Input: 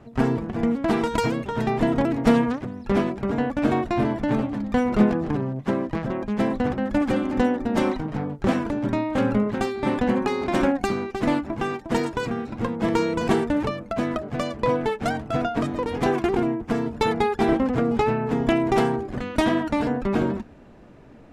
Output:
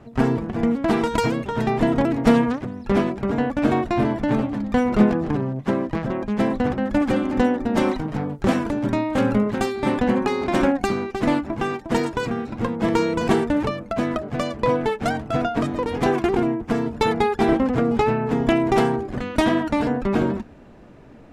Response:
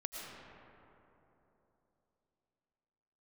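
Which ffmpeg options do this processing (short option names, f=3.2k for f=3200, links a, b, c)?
-filter_complex "[0:a]asettb=1/sr,asplit=3[a][b][c];[a]atrim=end=7.884[d];[b]atrim=start=7.88:end=9.92,asetpts=PTS-STARTPTS,afade=t=in:d=0.004:c=qsin,afade=t=out:st=2.036:d=0.004:c=qsin,highshelf=f=6.4k:g=6[e];[c]atrim=start=9.916[f];[d][e]acrossfade=d=0.004:c1=hsin:c2=qsin[g];[g][f]acrossfade=d=0.004:c1=qsin:c2=hsin,volume=2dB"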